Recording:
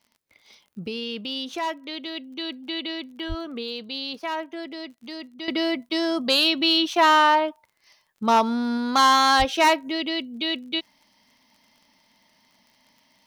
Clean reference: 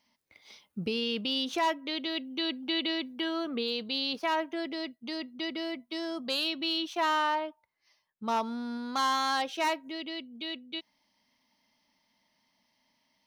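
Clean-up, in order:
click removal
0:03.28–0:03.40: high-pass filter 140 Hz 24 dB per octave
0:09.38–0:09.50: high-pass filter 140 Hz 24 dB per octave
repair the gap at 0:05.89, 10 ms
level 0 dB, from 0:05.48 −11 dB

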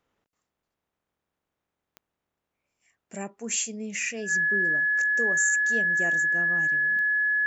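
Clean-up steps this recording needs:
click removal
notch filter 1,700 Hz, Q 30

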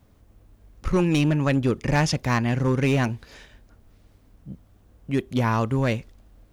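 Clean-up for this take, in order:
clipped peaks rebuilt −14 dBFS

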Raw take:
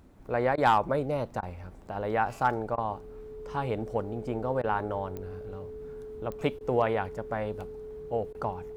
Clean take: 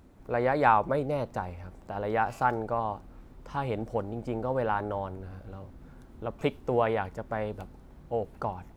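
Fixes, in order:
clipped peaks rebuilt −14 dBFS
click removal
notch filter 430 Hz, Q 30
repair the gap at 0:00.56/0:01.41/0:02.76/0:04.62/0:06.59/0:08.33, 16 ms

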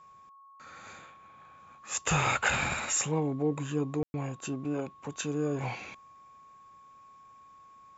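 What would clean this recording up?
notch filter 1,100 Hz, Q 30
ambience match 0:04.03–0:04.14

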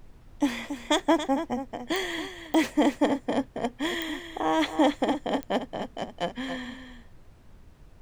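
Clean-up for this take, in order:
click removal
noise reduction from a noise print 21 dB
echo removal 278 ms −10 dB

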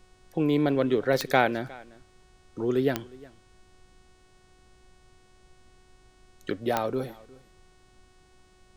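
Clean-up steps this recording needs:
click removal
hum removal 369.7 Hz, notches 26
downward expander −51 dBFS, range −21 dB
echo removal 359 ms −22.5 dB

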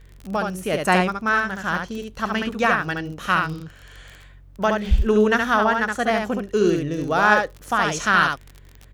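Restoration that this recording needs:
click removal
hum removal 46.2 Hz, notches 3
echo removal 71 ms −4 dB

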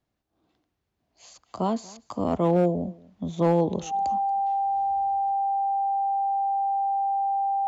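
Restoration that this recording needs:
clipped peaks rebuilt −14.5 dBFS
notch filter 790 Hz, Q 30
echo removal 234 ms −23 dB

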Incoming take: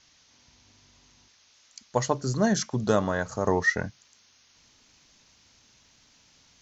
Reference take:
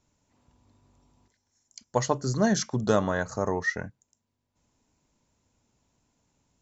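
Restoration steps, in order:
noise reduction from a noise print 16 dB
level correction −4.5 dB, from 0:03.47

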